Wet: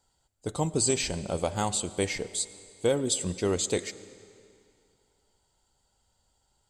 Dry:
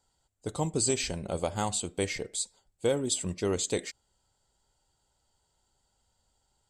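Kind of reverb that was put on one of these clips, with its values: digital reverb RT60 2.4 s, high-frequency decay 0.95×, pre-delay 65 ms, DRR 16.5 dB; gain +2 dB

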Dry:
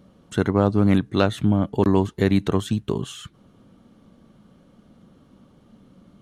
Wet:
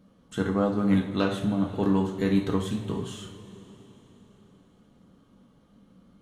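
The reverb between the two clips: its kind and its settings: two-slope reverb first 0.43 s, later 4.1 s, from -18 dB, DRR -0.5 dB; gain -8.5 dB

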